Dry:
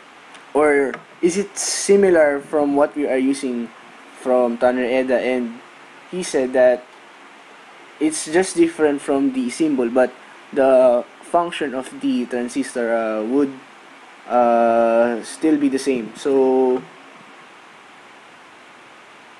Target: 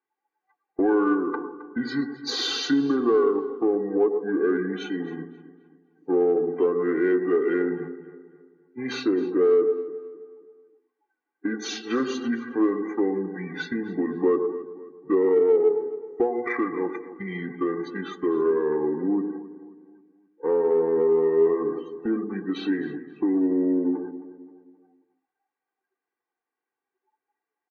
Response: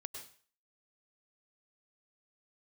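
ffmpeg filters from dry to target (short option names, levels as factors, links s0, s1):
-filter_complex "[0:a]acrossover=split=260 7000:gain=0.0708 1 0.112[s0][s1][s2];[s0][s1][s2]amix=inputs=3:normalize=0,bandreject=f=1800:w=11,agate=range=0.316:threshold=0.0282:ratio=16:detection=peak,asplit=2[s3][s4];[1:a]atrim=start_sample=2205,asetrate=61740,aresample=44100,highshelf=f=4800:g=-8[s5];[s4][s5]afir=irnorm=-1:irlink=0,volume=2.11[s6];[s3][s6]amix=inputs=2:normalize=0,acompressor=threshold=0.126:ratio=2,equalizer=f=880:t=o:w=0.32:g=-12,aecho=1:1:1.8:0.67,afftdn=nr=35:nf=-33,asplit=2[s7][s8];[s8]asoftclip=type=tanh:threshold=0.178,volume=0.335[s9];[s7][s9]amix=inputs=2:normalize=0,bandreject=f=60:t=h:w=6,bandreject=f=120:t=h:w=6,bandreject=f=180:t=h:w=6,bandreject=f=240:t=h:w=6,bandreject=f=300:t=h:w=6,bandreject=f=360:t=h:w=6,asplit=2[s10][s11];[s11]adelay=186,lowpass=f=3400:p=1,volume=0.188,asplit=2[s12][s13];[s13]adelay=186,lowpass=f=3400:p=1,volume=0.42,asplit=2[s14][s15];[s15]adelay=186,lowpass=f=3400:p=1,volume=0.42,asplit=2[s16][s17];[s17]adelay=186,lowpass=f=3400:p=1,volume=0.42[s18];[s10][s12][s14][s16][s18]amix=inputs=5:normalize=0,asetrate=30870,aresample=44100,volume=0.398"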